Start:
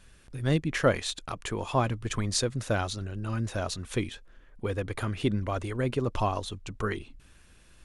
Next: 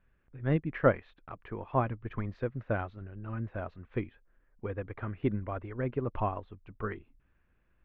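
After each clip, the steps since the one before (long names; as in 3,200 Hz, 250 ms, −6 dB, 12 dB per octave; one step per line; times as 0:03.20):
low-pass filter 2,200 Hz 24 dB per octave
expander for the loud parts 1.5 to 1, over −45 dBFS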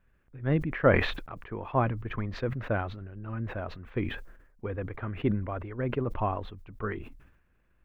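level that may fall only so fast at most 67 dB per second
level +1.5 dB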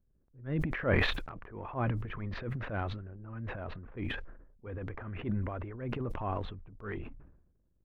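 low-pass that shuts in the quiet parts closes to 400 Hz, open at −26.5 dBFS
transient designer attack −9 dB, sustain +9 dB
level −5 dB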